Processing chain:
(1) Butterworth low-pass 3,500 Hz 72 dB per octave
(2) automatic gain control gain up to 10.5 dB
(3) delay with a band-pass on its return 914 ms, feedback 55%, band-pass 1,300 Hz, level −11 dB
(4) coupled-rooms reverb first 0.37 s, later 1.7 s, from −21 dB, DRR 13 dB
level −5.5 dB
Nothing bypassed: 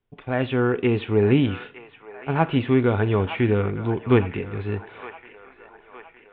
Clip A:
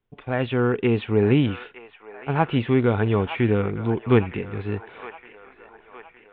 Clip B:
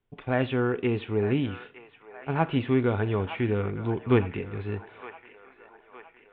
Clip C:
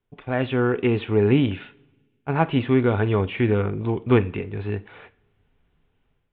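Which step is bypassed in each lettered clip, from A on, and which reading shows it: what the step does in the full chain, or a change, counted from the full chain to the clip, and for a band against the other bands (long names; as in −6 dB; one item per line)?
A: 4, echo-to-direct ratio −8.5 dB to −10.5 dB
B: 2, change in momentary loudness spread −2 LU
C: 3, echo-to-direct ratio −8.5 dB to −13.0 dB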